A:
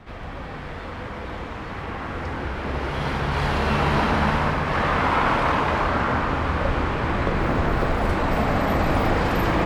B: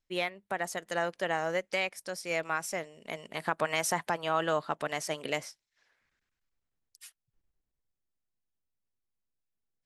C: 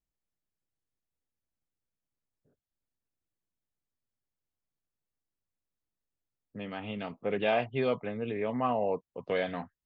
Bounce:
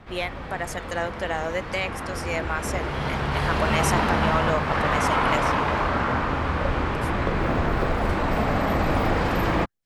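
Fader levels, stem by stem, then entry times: −1.5, +3.0, −11.5 decibels; 0.00, 0.00, 0.00 seconds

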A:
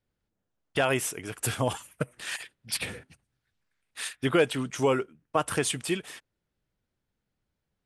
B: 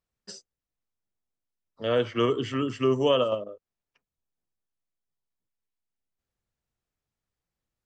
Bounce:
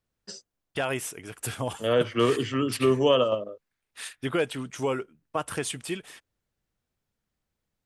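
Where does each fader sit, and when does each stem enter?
−3.5, +1.5 decibels; 0.00, 0.00 seconds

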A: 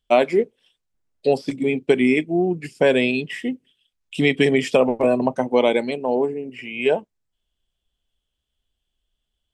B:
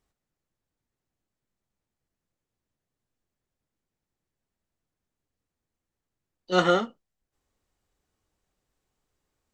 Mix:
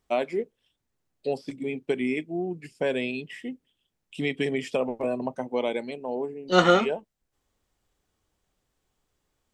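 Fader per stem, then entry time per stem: −10.0, +3.0 decibels; 0.00, 0.00 seconds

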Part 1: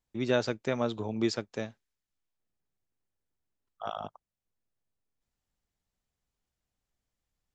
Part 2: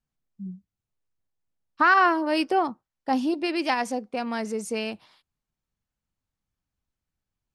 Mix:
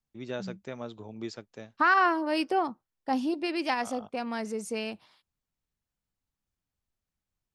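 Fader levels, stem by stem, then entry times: −9.0, −4.0 decibels; 0.00, 0.00 seconds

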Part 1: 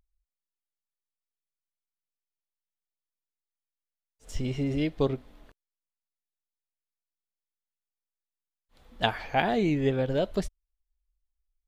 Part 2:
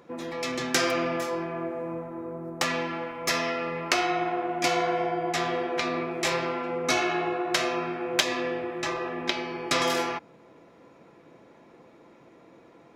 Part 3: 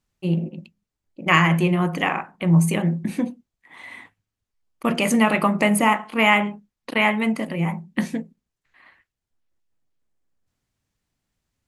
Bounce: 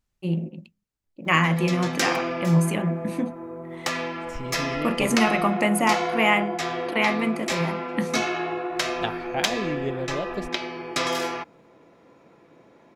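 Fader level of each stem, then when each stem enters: −4.0, −0.5, −3.5 decibels; 0.00, 1.25, 0.00 seconds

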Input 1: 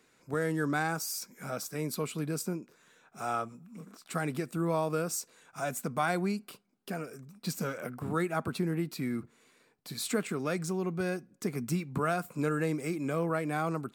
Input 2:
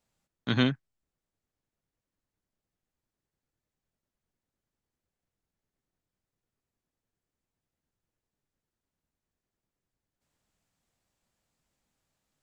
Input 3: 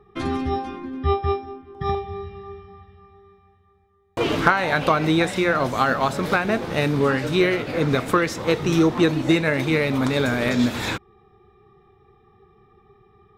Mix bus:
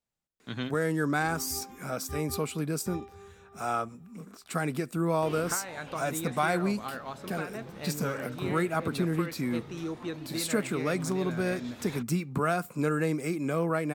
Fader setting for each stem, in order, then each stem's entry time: +2.5, −10.0, −18.0 decibels; 0.40, 0.00, 1.05 seconds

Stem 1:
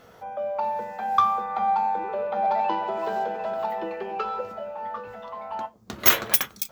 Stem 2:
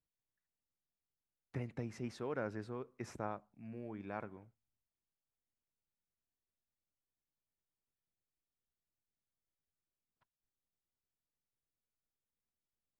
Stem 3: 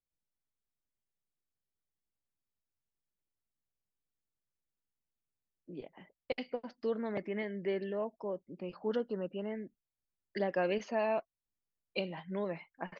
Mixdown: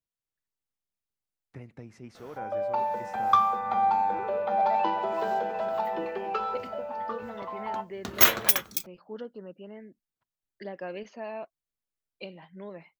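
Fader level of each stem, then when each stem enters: −1.0, −3.0, −5.5 decibels; 2.15, 0.00, 0.25 seconds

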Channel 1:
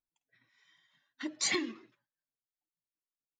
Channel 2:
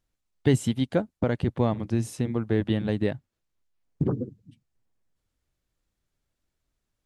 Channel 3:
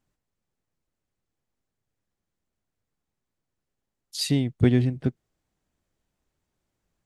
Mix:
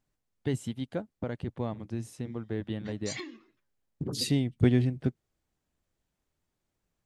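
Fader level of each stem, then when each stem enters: −8.0, −9.5, −3.5 decibels; 1.65, 0.00, 0.00 seconds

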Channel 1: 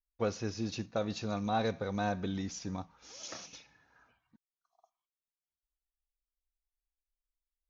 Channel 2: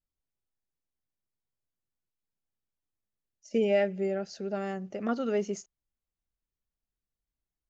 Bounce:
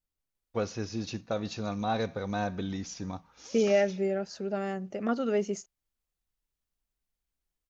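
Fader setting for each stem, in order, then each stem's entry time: +1.5, +1.0 decibels; 0.35, 0.00 seconds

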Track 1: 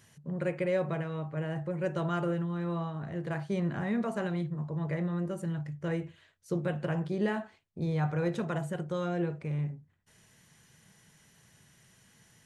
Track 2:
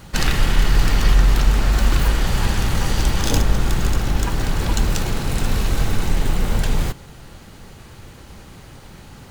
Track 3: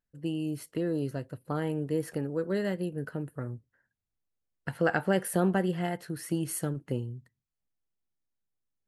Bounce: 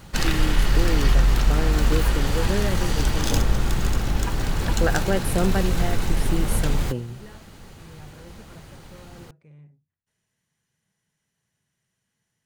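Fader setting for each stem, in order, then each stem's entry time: −16.5, −3.5, +2.5 decibels; 0.00, 0.00, 0.00 seconds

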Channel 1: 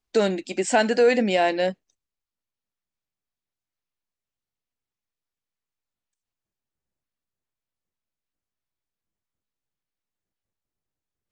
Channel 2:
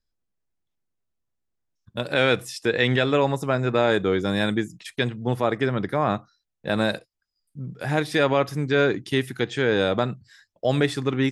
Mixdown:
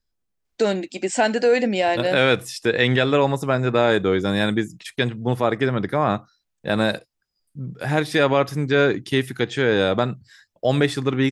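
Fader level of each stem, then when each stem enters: +0.5, +2.5 decibels; 0.45, 0.00 seconds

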